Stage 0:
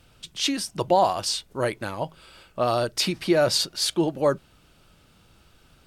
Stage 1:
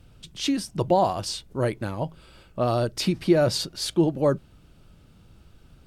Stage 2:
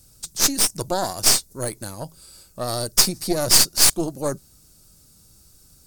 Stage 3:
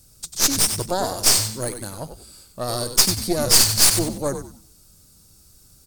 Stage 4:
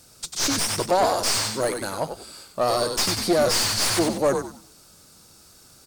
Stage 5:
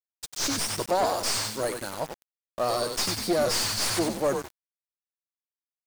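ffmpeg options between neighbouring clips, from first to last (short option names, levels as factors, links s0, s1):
-af "lowshelf=f=420:g=12,volume=0.562"
-af "aexciter=amount=13:drive=5.8:freq=4600,aeval=exprs='1.5*(cos(1*acos(clip(val(0)/1.5,-1,1)))-cos(1*PI/2))+0.299*(cos(6*acos(clip(val(0)/1.5,-1,1)))-cos(6*PI/2))':c=same,volume=0.562"
-filter_complex "[0:a]asplit=5[s0][s1][s2][s3][s4];[s1]adelay=94,afreqshift=-110,volume=0.398[s5];[s2]adelay=188,afreqshift=-220,volume=0.123[s6];[s3]adelay=282,afreqshift=-330,volume=0.0385[s7];[s4]adelay=376,afreqshift=-440,volume=0.0119[s8];[s0][s5][s6][s7][s8]amix=inputs=5:normalize=0"
-filter_complex "[0:a]asplit=2[s0][s1];[s1]highpass=f=720:p=1,volume=17.8,asoftclip=type=tanh:threshold=0.891[s2];[s0][s2]amix=inputs=2:normalize=0,lowpass=f=2100:p=1,volume=0.501,volume=0.473"
-af "aeval=exprs='val(0)*gte(abs(val(0)),0.0299)':c=same,volume=0.596"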